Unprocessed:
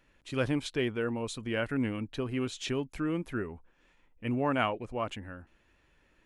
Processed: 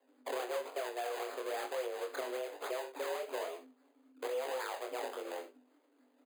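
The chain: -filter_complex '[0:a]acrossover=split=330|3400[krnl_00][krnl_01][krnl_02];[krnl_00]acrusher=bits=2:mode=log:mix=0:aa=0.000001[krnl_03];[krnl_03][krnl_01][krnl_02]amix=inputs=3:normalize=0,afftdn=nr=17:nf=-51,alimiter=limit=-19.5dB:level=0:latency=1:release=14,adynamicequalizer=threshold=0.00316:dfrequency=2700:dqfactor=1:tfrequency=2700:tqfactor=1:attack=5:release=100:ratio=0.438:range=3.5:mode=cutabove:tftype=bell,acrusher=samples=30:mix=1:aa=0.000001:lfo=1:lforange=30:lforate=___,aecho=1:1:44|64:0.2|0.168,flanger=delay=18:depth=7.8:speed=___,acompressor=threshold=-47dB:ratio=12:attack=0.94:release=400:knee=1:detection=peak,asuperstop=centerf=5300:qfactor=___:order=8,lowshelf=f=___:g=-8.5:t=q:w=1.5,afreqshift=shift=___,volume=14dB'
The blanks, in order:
3.6, 1.1, 4.8, 110, 250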